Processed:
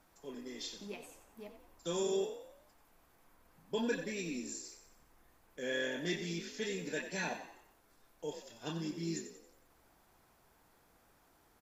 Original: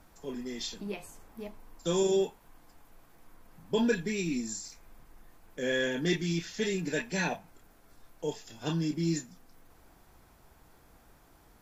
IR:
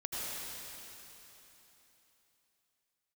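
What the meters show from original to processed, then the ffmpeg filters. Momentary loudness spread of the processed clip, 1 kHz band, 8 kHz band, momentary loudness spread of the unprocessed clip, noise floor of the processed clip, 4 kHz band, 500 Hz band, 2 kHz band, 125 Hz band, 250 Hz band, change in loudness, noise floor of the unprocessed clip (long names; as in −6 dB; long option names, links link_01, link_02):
17 LU, −6.0 dB, −5.5 dB, 17 LU, −69 dBFS, −5.5 dB, −7.0 dB, −5.5 dB, −10.5 dB, −8.5 dB, −7.5 dB, −61 dBFS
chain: -filter_complex "[0:a]lowshelf=frequency=170:gain=-9.5,asplit=6[link_01][link_02][link_03][link_04][link_05][link_06];[link_02]adelay=91,afreqshift=43,volume=-10dB[link_07];[link_03]adelay=182,afreqshift=86,volume=-17.1dB[link_08];[link_04]adelay=273,afreqshift=129,volume=-24.3dB[link_09];[link_05]adelay=364,afreqshift=172,volume=-31.4dB[link_10];[link_06]adelay=455,afreqshift=215,volume=-38.5dB[link_11];[link_01][link_07][link_08][link_09][link_10][link_11]amix=inputs=6:normalize=0,volume=-6dB"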